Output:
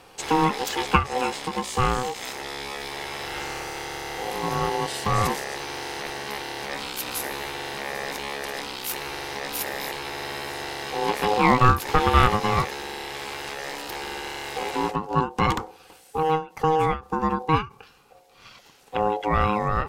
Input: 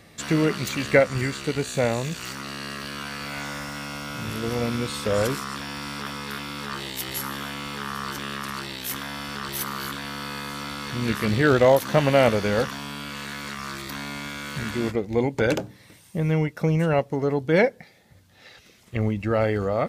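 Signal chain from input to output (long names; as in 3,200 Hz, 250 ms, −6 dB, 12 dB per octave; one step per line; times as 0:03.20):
ring modulation 630 Hz
every ending faded ahead of time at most 190 dB per second
level +3.5 dB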